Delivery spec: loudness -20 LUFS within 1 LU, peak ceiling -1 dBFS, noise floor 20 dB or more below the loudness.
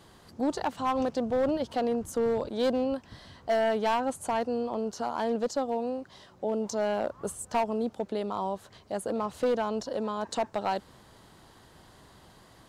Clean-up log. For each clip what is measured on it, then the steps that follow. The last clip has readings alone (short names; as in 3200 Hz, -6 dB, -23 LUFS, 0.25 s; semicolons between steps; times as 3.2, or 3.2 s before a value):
clipped 1.2%; flat tops at -21.0 dBFS; loudness -30.5 LUFS; peak -21.0 dBFS; loudness target -20.0 LUFS
-> clip repair -21 dBFS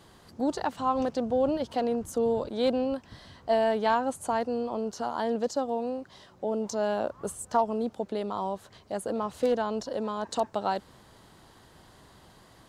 clipped 0.0%; loudness -30.0 LUFS; peak -12.0 dBFS; loudness target -20.0 LUFS
-> gain +10 dB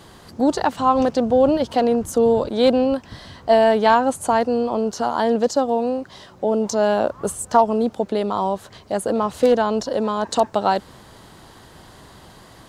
loudness -20.0 LUFS; peak -2.0 dBFS; noise floor -46 dBFS